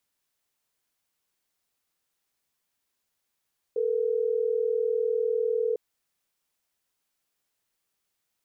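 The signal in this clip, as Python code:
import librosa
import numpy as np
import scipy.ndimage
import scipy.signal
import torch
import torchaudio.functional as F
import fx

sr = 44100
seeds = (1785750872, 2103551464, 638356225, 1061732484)

y = fx.call_progress(sr, length_s=3.12, kind='ringback tone', level_db=-26.0)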